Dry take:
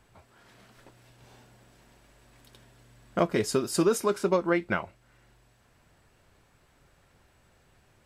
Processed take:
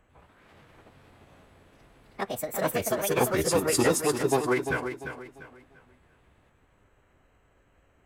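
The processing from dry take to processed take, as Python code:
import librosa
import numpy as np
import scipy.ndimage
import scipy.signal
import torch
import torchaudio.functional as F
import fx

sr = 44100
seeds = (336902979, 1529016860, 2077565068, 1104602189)

y = fx.wiener(x, sr, points=9)
y = fx.high_shelf(y, sr, hz=6000.0, db=10.0)
y = fx.echo_pitch(y, sr, ms=98, semitones=4, count=2, db_per_echo=-3.0)
y = fx.echo_feedback(y, sr, ms=346, feedback_pct=32, wet_db=-8.5)
y = fx.pitch_keep_formants(y, sr, semitones=-5.5)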